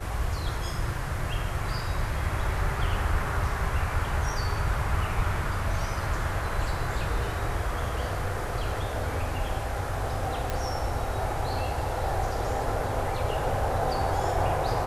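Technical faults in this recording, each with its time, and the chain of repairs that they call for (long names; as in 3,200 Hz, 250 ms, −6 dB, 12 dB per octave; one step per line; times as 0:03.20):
0:10.50: click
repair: click removal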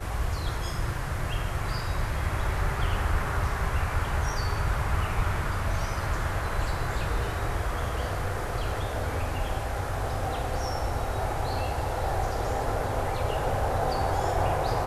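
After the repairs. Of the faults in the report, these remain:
none of them is left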